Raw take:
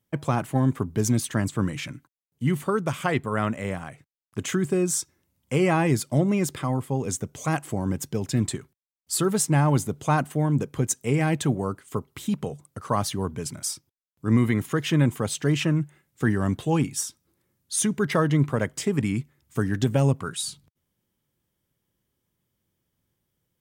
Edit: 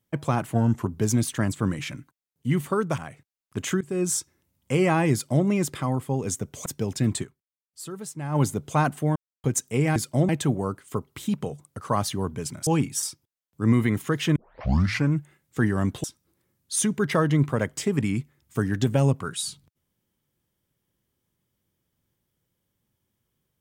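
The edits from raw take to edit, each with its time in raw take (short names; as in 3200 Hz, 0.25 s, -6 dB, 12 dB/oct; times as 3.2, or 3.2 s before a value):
0.54–0.82 speed 88%
2.94–3.79 cut
4.62–4.87 fade in, from -22.5 dB
5.94–6.27 copy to 11.29
7.47–7.99 cut
8.56–9.7 dip -13.5 dB, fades 0.41 s exponential
10.49–10.77 mute
15 tape start 0.76 s
16.68–17.04 move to 13.67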